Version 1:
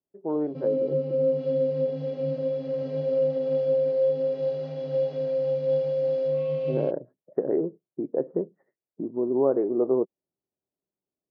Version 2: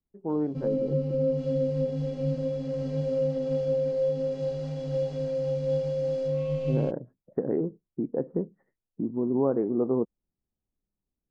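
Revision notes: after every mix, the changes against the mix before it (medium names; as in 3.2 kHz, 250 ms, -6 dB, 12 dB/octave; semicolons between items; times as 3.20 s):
master: remove cabinet simulation 180–4600 Hz, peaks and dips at 220 Hz -7 dB, 380 Hz +5 dB, 610 Hz +7 dB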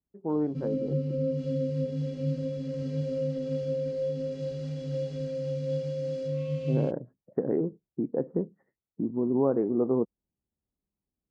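background: add peaking EQ 820 Hz -14 dB 0.84 oct; master: add high-pass 46 Hz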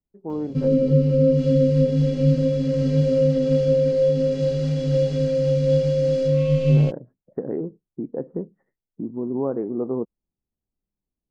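background +12.0 dB; master: remove high-pass 46 Hz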